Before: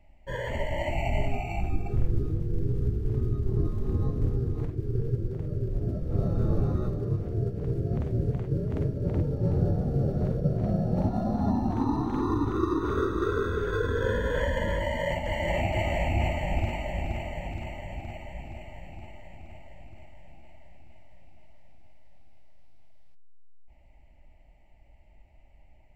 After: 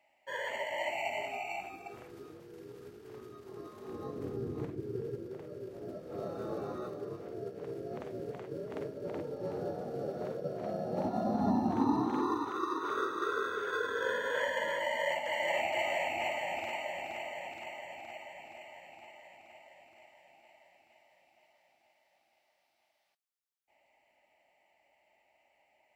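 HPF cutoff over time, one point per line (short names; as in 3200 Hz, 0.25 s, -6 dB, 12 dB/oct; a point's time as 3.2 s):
3.66 s 710 Hz
4.6 s 210 Hz
5.45 s 470 Hz
10.73 s 470 Hz
11.45 s 220 Hz
12 s 220 Hz
12.52 s 640 Hz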